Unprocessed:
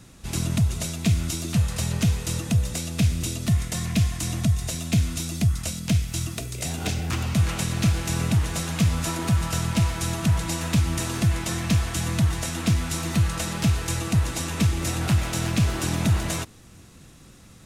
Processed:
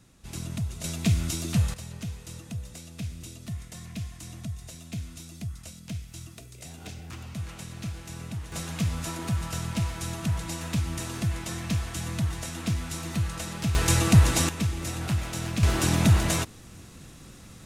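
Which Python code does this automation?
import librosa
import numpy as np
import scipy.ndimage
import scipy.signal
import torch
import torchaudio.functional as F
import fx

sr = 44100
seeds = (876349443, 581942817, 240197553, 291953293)

y = fx.gain(x, sr, db=fx.steps((0.0, -9.5), (0.84, -2.0), (1.74, -14.0), (8.52, -6.5), (13.75, 5.0), (14.49, -6.0), (15.63, 2.0)))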